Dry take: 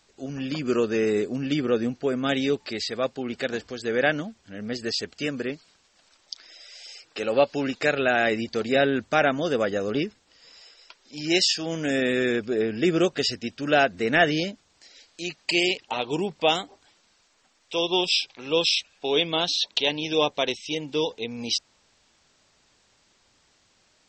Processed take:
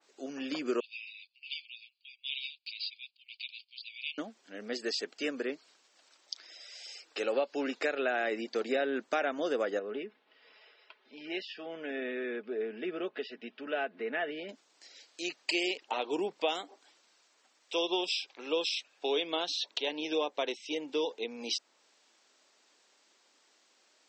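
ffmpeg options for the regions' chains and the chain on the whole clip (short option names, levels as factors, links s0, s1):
-filter_complex "[0:a]asettb=1/sr,asplit=3[s0][s1][s2];[s0]atrim=end=0.804[s3];[s1]atrim=start=0.8:end=4.18,asetpts=PTS-STARTPTS,afade=t=in:d=0.004:c=qsin,afade=t=out:st=3.376:d=0.004:c=qsin,asuperpass=centerf=3400:order=20:qfactor=1.3,agate=range=0.178:threshold=0.002:ratio=16:release=100:detection=peak[s4];[s2]atrim=start=4.176[s5];[s3][s4]acrossfade=d=0.004:c1=hsin:c2=qsin[s6];[s6][s5]acrossfade=d=0.004:c1=qsin:c2=hsin,asettb=1/sr,asplit=3[s7][s8][s9];[s7]atrim=end=9.794[s10];[s8]atrim=start=9.79:end=14.49,asetpts=PTS-STARTPTS,afade=t=in:d=0.004:c=qsin,afade=t=out:st=4.696:d=0.004:c=qsin,acompressor=threshold=0.00708:ratio=1.5:attack=3.2:release=140:knee=1:detection=peak,lowpass=f=3200:w=0.5412,lowpass=f=3200:w=1.3066,aecho=1:1:4.7:0.42,atrim=end_sample=207270[s11];[s9]atrim=start=14.486[s12];[s10][s11]acrossfade=d=0.004:c1=hsin:c2=qsin[s13];[s13][s12]acrossfade=d=0.004:c1=qsin:c2=hsin,highpass=f=280:w=0.5412,highpass=f=280:w=1.3066,acompressor=threshold=0.0708:ratio=6,adynamicequalizer=threshold=0.00631:dfrequency=2500:dqfactor=0.7:tfrequency=2500:tqfactor=0.7:attack=5:release=100:ratio=0.375:range=3:mode=cutabove:tftype=highshelf,volume=0.668"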